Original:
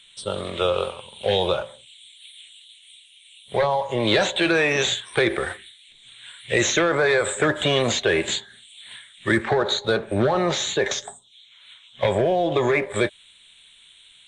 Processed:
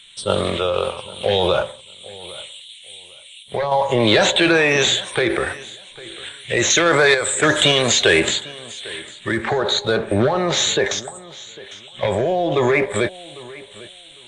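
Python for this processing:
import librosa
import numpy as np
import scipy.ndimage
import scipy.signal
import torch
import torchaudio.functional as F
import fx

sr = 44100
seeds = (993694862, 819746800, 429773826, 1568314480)

p1 = fx.high_shelf(x, sr, hz=2700.0, db=10.5, at=(6.7, 8.2))
p2 = fx.over_compress(p1, sr, threshold_db=-26.0, ratio=-1.0)
p3 = p1 + (p2 * librosa.db_to_amplitude(-3.0))
p4 = fx.tremolo_random(p3, sr, seeds[0], hz=3.5, depth_pct=55)
p5 = fx.echo_feedback(p4, sr, ms=801, feedback_pct=20, wet_db=-20.0)
y = p5 * librosa.db_to_amplitude(3.0)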